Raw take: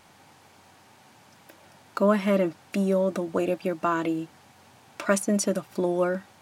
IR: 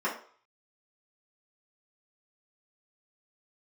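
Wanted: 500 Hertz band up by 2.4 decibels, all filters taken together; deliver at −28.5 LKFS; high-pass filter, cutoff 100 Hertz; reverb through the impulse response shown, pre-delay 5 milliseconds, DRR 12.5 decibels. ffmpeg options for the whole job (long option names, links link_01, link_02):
-filter_complex "[0:a]highpass=100,equalizer=frequency=500:width_type=o:gain=3,asplit=2[link_01][link_02];[1:a]atrim=start_sample=2205,adelay=5[link_03];[link_02][link_03]afir=irnorm=-1:irlink=0,volume=-22.5dB[link_04];[link_01][link_04]amix=inputs=2:normalize=0,volume=-4dB"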